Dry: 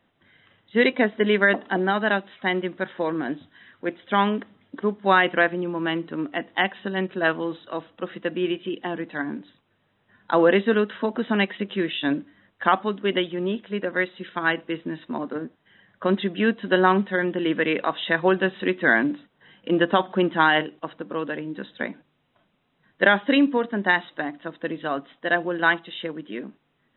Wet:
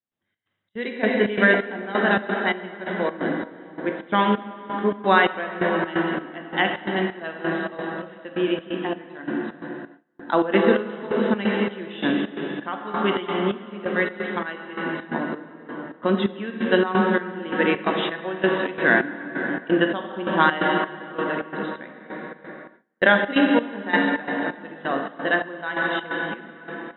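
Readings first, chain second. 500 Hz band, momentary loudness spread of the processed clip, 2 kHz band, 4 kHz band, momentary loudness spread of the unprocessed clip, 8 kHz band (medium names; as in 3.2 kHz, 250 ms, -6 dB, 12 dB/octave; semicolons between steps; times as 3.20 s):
+0.5 dB, 13 LU, +0.5 dB, -1.0 dB, 13 LU, no reading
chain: plate-style reverb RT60 4.9 s, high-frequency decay 0.55×, DRR 0.5 dB; trance gate ".xx.xx.." 131 bpm -12 dB; gate with hold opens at -37 dBFS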